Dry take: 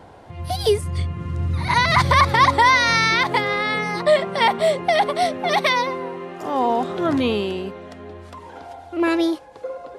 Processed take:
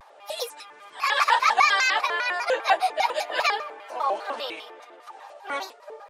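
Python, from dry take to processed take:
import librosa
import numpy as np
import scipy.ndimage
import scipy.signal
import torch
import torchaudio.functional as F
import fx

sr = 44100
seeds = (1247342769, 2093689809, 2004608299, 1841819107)

y = scipy.signal.sosfilt(scipy.signal.butter(4, 610.0, 'highpass', fs=sr, output='sos'), x)
y = fx.stretch_vocoder_free(y, sr, factor=0.61)
y = fx.vibrato_shape(y, sr, shape='square', rate_hz=5.0, depth_cents=250.0)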